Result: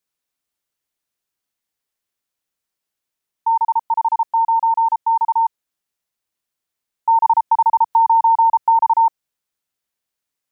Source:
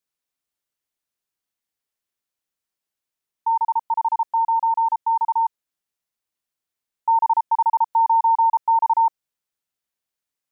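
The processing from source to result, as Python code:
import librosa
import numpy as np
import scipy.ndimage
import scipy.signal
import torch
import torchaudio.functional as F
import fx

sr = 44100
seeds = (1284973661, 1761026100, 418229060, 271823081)

y = fx.band_squash(x, sr, depth_pct=100, at=(7.25, 8.9))
y = F.gain(torch.from_numpy(y), 3.5).numpy()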